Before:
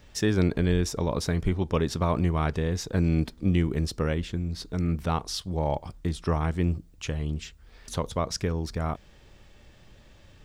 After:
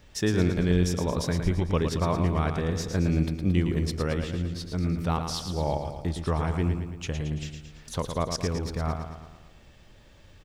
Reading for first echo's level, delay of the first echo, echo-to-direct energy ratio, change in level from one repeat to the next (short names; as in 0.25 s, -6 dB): -7.0 dB, 0.112 s, -5.5 dB, -5.5 dB